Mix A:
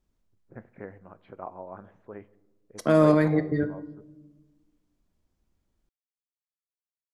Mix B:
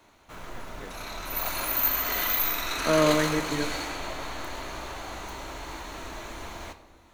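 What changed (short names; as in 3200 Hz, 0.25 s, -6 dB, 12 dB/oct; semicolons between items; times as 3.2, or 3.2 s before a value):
background: unmuted; master: add low shelf 390 Hz -8 dB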